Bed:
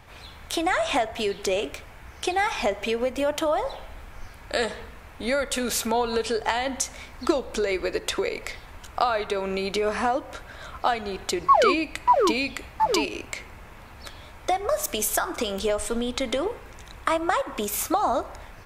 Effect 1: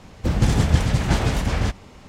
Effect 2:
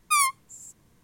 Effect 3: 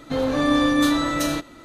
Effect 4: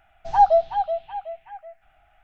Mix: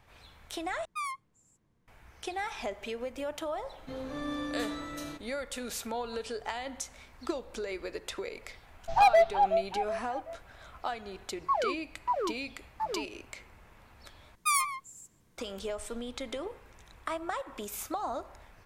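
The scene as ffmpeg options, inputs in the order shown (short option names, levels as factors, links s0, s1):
-filter_complex "[2:a]asplit=2[s0][s1];[0:a]volume=0.266[s2];[s0]aemphasis=mode=reproduction:type=75kf[s3];[4:a]asoftclip=type=hard:threshold=0.158[s4];[s1]asplit=2[s5][s6];[s6]adelay=140,highpass=300,lowpass=3400,asoftclip=type=hard:threshold=0.126,volume=0.398[s7];[s5][s7]amix=inputs=2:normalize=0[s8];[s2]asplit=3[s9][s10][s11];[s9]atrim=end=0.854[s12];[s3]atrim=end=1.03,asetpts=PTS-STARTPTS,volume=0.282[s13];[s10]atrim=start=1.876:end=14.354[s14];[s8]atrim=end=1.03,asetpts=PTS-STARTPTS,volume=0.531[s15];[s11]atrim=start=15.376[s16];[3:a]atrim=end=1.64,asetpts=PTS-STARTPTS,volume=0.141,afade=t=in:d=0.004:c=hsin,afade=t=out:st=1.636:d=0.004:c=hsin,adelay=166257S[s17];[s4]atrim=end=2.23,asetpts=PTS-STARTPTS,volume=0.841,afade=t=in:d=0.004:c=hsin,afade=t=out:st=2.226:d=0.004:c=hsin,adelay=8630[s18];[s12][s13]acrossfade=d=0.004:c1=hsin:c2=hsin[s19];[s19][s14]acrossfade=d=0.004:c1=hsin:c2=hsin[s20];[s20][s15]acrossfade=d=0.004:c1=hsin:c2=hsin[s21];[s21][s16]acrossfade=d=0.004:c1=hsin:c2=hsin[s22];[s22][s17][s18]amix=inputs=3:normalize=0"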